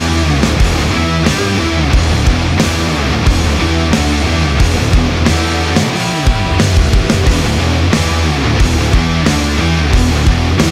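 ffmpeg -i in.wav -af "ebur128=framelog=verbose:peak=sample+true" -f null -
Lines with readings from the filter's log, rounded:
Integrated loudness:
  I:         -12.5 LUFS
  Threshold: -22.5 LUFS
Loudness range:
  LRA:         0.5 LU
  Threshold: -32.5 LUFS
  LRA low:   -12.7 LUFS
  LRA high:  -12.3 LUFS
Sample peak:
  Peak:       -1.9 dBFS
True peak:
  Peak:       -1.7 dBFS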